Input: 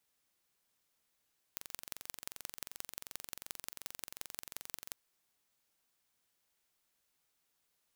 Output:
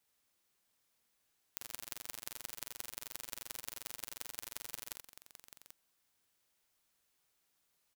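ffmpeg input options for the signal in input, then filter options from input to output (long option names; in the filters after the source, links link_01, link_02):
-f lavfi -i "aevalsrc='0.251*eq(mod(n,1943),0)*(0.5+0.5*eq(mod(n,7772),0))':duration=3.37:sample_rate=44100"
-filter_complex "[0:a]asplit=2[link_01][link_02];[link_02]aecho=0:1:52|79|173|786:0.376|0.355|0.126|0.282[link_03];[link_01][link_03]amix=inputs=2:normalize=0"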